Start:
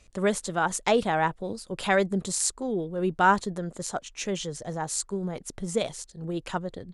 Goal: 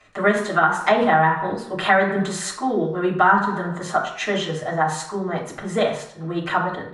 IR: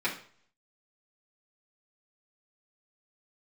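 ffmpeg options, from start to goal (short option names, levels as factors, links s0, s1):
-filter_complex "[0:a]equalizer=f=1200:w=0.54:g=12[s0];[1:a]atrim=start_sample=2205,asetrate=34839,aresample=44100[s1];[s0][s1]afir=irnorm=-1:irlink=0,acrossover=split=290[s2][s3];[s3]acompressor=threshold=0.282:ratio=3[s4];[s2][s4]amix=inputs=2:normalize=0,volume=0.562"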